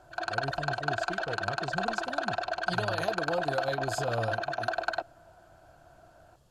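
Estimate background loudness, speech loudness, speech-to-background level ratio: −32.5 LKFS, −37.5 LKFS, −5.0 dB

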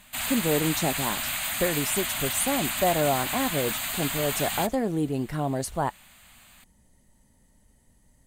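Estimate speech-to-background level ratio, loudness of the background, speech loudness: 0.0 dB, −28.0 LKFS, −28.0 LKFS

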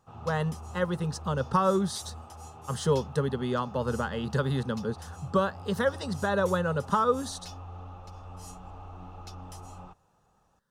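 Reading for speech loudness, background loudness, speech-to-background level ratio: −29.5 LKFS, −44.5 LKFS, 15.0 dB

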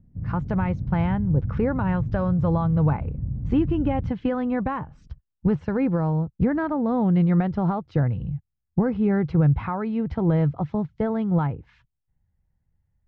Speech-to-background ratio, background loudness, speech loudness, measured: 7.0 dB, −31.0 LKFS, −24.0 LKFS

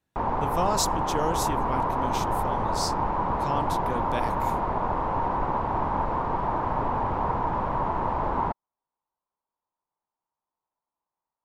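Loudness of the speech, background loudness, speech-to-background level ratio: −32.5 LKFS, −27.5 LKFS, −5.0 dB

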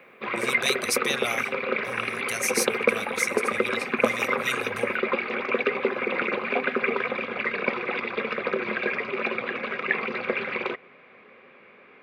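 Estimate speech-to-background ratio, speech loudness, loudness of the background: −5.0 dB, −31.5 LKFS, −26.5 LKFS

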